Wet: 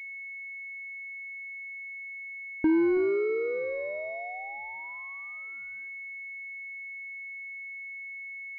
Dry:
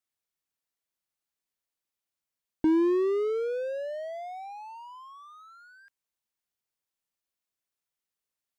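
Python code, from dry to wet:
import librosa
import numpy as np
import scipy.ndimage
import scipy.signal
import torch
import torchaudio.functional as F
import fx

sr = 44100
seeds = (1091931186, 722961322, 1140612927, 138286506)

p1 = x + fx.echo_feedback(x, sr, ms=327, feedback_pct=32, wet_db=-18.0, dry=0)
y = fx.pwm(p1, sr, carrier_hz=2200.0)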